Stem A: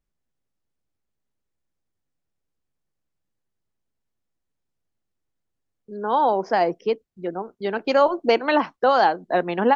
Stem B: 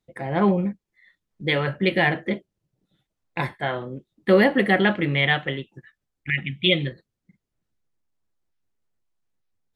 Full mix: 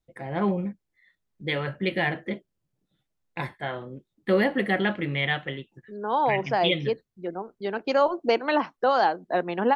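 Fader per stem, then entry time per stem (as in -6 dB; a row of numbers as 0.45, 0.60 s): -4.0, -5.5 dB; 0.00, 0.00 s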